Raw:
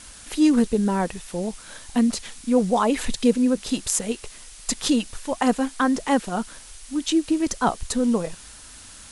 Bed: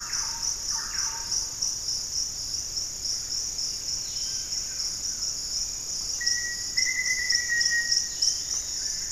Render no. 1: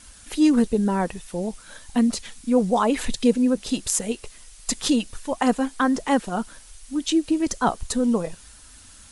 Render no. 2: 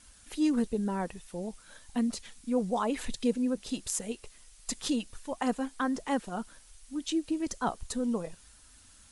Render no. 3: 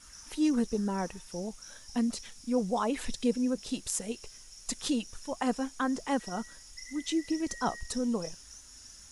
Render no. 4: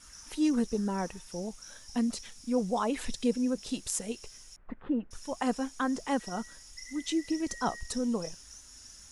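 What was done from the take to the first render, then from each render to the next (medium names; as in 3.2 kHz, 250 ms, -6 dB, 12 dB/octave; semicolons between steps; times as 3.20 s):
noise reduction 6 dB, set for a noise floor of -44 dBFS
trim -9.5 dB
add bed -22 dB
4.56–5.11 s: inverse Chebyshev low-pass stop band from 5.5 kHz, stop band 60 dB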